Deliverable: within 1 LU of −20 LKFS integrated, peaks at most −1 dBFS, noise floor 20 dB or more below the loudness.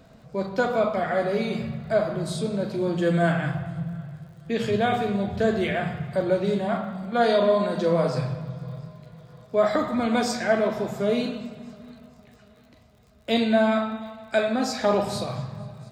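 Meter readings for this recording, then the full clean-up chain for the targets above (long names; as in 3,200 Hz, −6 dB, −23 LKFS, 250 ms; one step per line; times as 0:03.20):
crackle rate 54 per second; integrated loudness −25.0 LKFS; sample peak −8.5 dBFS; target loudness −20.0 LKFS
→ click removal
level +5 dB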